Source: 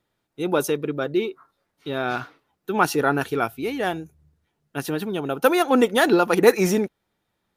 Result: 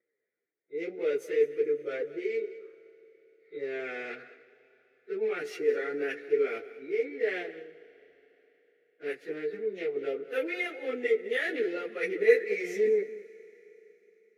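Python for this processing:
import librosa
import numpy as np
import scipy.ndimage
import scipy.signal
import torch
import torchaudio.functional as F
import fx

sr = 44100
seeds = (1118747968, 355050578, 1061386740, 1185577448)

p1 = fx.wiener(x, sr, points=15)
p2 = fx.tilt_eq(p1, sr, slope=2.5)
p3 = fx.over_compress(p2, sr, threshold_db=-25.0, ratio=-0.5)
p4 = p2 + F.gain(torch.from_numpy(p3), -1.0).numpy()
p5 = fx.double_bandpass(p4, sr, hz=960.0, octaves=2.2)
p6 = p5 + fx.echo_single(p5, sr, ms=106, db=-17.0, dry=0)
p7 = fx.stretch_vocoder_free(p6, sr, factor=1.9)
y = fx.rev_schroeder(p7, sr, rt60_s=3.9, comb_ms=26, drr_db=17.5)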